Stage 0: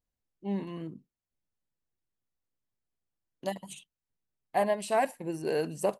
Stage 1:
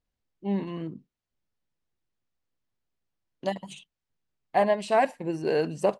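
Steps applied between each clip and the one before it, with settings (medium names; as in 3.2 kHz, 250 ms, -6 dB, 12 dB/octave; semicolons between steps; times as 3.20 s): low-pass 5.4 kHz 12 dB/octave; trim +4.5 dB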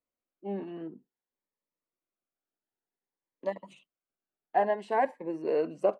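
three-band isolator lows -22 dB, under 260 Hz, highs -18 dB, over 2.1 kHz; Shepard-style phaser rising 0.54 Hz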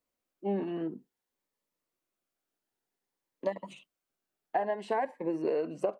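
compression 12:1, threshold -32 dBFS, peak gain reduction 12.5 dB; trim +5.5 dB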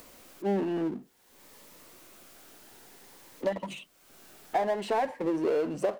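power-law waveshaper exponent 0.7; upward compressor, threshold -41 dBFS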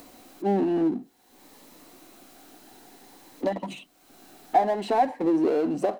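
small resonant body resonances 280/740/4000 Hz, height 10 dB, ringing for 25 ms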